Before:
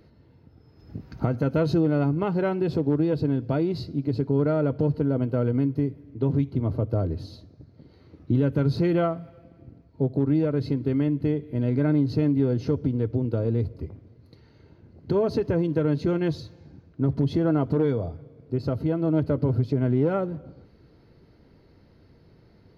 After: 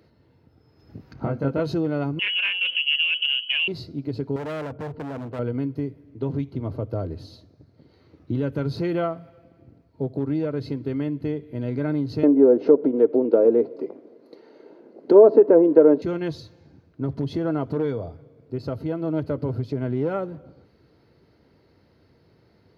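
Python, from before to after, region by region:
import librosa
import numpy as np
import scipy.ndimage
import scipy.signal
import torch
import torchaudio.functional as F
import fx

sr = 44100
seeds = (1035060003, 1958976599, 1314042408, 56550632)

y = fx.chain(x, sr, fx.lowpass(hz=1900.0, slope=6),
    fx.doubler(ms=22.0, db=-2), at=(1.13, 1.6))
y = fx.chain(y, sr, fx.freq_invert(carrier_hz=3100),
    fx.doppler_dist(depth_ms=0.12), at=(2.19, 3.68))
y = fx.chain(y, sr, fx.lowpass(hz=2000.0, slope=12),
    fx.clip_hard(threshold_db=-27.0), at=(4.36, 5.39))
y = fx.chain(y, sr, fx.highpass(hz=230.0, slope=24),
    fx.env_lowpass_down(base_hz=1400.0, full_db=-22.5),
    fx.peak_eq(hz=480.0, db=14.5, octaves=2.3), at=(12.23, 16.02))
y = scipy.signal.sosfilt(scipy.signal.butter(2, 86.0, 'highpass', fs=sr, output='sos'), y)
y = fx.peak_eq(y, sr, hz=170.0, db=-4.5, octaves=1.8)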